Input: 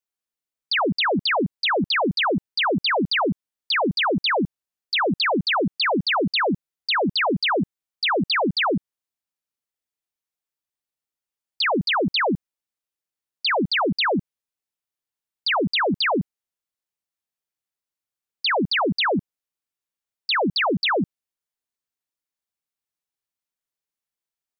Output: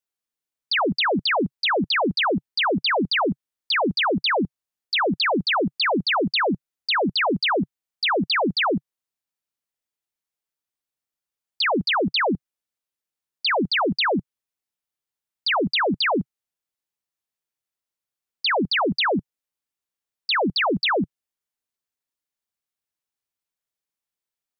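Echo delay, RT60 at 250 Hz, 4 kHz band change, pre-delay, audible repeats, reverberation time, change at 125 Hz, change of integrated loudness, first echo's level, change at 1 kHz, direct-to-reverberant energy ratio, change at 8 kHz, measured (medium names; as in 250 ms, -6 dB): no echo, no reverb, 0.0 dB, no reverb, no echo, no reverb, -1.5 dB, 0.0 dB, no echo, 0.0 dB, no reverb, no reading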